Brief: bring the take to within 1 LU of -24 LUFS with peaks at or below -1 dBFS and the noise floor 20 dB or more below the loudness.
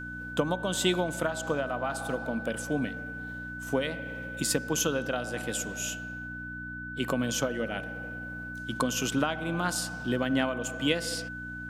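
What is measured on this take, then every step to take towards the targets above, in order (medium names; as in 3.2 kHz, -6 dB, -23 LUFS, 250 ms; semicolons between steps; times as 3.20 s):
hum 60 Hz; highest harmonic 300 Hz; hum level -40 dBFS; steady tone 1.5 kHz; tone level -38 dBFS; loudness -31.0 LUFS; peak level -10.0 dBFS; loudness target -24.0 LUFS
-> de-hum 60 Hz, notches 5; band-stop 1.5 kHz, Q 30; trim +7 dB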